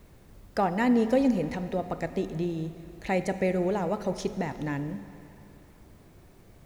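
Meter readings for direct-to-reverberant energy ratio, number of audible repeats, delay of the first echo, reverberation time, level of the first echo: 11.0 dB, no echo audible, no echo audible, 2.9 s, no echo audible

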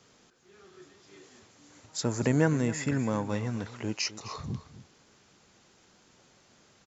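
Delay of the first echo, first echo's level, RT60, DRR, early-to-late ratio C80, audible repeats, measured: 259 ms, −15.5 dB, no reverb audible, no reverb audible, no reverb audible, 1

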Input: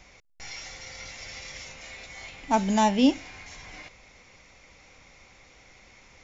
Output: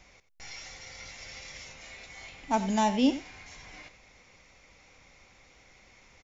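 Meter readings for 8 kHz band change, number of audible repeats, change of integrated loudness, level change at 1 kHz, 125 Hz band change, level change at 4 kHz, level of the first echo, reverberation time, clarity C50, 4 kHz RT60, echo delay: can't be measured, 1, −4.0 dB, −4.0 dB, can't be measured, −4.0 dB, −14.5 dB, no reverb audible, no reverb audible, no reverb audible, 89 ms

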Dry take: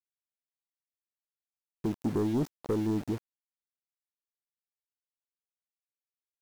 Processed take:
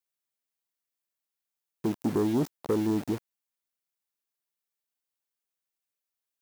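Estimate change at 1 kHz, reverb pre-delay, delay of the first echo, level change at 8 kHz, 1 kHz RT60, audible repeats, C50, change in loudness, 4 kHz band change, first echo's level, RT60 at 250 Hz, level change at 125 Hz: +4.0 dB, no reverb audible, no echo audible, +5.5 dB, no reverb audible, no echo audible, no reverb audible, +2.5 dB, +4.5 dB, no echo audible, no reverb audible, 0.0 dB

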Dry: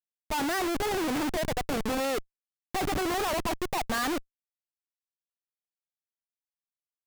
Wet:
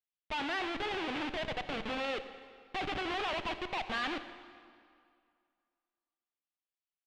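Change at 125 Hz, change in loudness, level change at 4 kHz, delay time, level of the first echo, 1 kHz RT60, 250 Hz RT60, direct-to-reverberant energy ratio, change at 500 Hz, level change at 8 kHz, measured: −10.0 dB, −6.0 dB, −2.5 dB, 89 ms, −19.0 dB, 2.3 s, 2.2 s, 10.0 dB, −8.0 dB, −19.5 dB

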